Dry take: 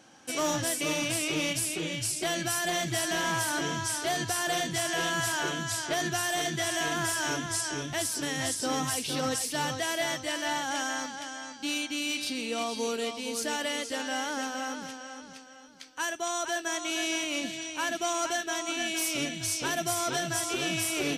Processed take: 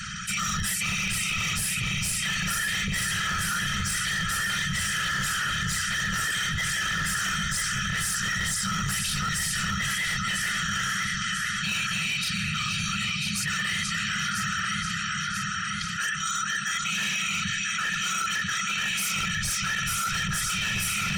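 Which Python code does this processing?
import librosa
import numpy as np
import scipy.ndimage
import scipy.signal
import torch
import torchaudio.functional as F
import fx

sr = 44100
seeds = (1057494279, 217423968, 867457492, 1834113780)

y = fx.high_shelf(x, sr, hz=2200.0, db=-9.0)
y = fx.whisperise(y, sr, seeds[0])
y = scipy.signal.sosfilt(scipy.signal.cheby1(5, 1.0, [200.0, 1300.0], 'bandstop', fs=sr, output='sos'), y)
y = fx.low_shelf(y, sr, hz=170.0, db=-5.0)
y = fx.hum_notches(y, sr, base_hz=60, count=2)
y = y + 0.59 * np.pad(y, (int(1.6 * sr / 1000.0), 0))[:len(y)]
y = fx.spec_gate(y, sr, threshold_db=-25, keep='strong')
y = fx.echo_feedback(y, sr, ms=992, feedback_pct=40, wet_db=-6)
y = np.clip(10.0 ** (33.5 / 20.0) * y, -1.0, 1.0) / 10.0 ** (33.5 / 20.0)
y = fx.env_flatten(y, sr, amount_pct=70)
y = y * librosa.db_to_amplitude(8.5)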